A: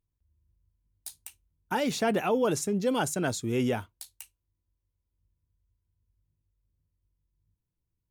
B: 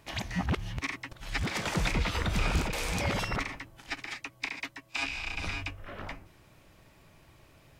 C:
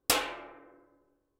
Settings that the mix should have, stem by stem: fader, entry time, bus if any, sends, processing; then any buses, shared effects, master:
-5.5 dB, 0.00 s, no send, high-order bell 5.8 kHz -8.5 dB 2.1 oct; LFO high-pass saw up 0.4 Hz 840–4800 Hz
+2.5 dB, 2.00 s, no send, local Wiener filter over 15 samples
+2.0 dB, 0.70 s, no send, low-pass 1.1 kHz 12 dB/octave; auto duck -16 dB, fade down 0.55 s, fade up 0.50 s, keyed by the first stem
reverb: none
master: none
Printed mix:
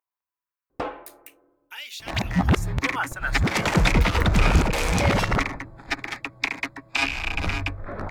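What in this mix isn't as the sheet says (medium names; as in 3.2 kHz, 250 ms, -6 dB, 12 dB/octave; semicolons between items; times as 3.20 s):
stem A -5.5 dB -> +1.0 dB; stem B +2.5 dB -> +10.5 dB; stem C +2.0 dB -> +12.5 dB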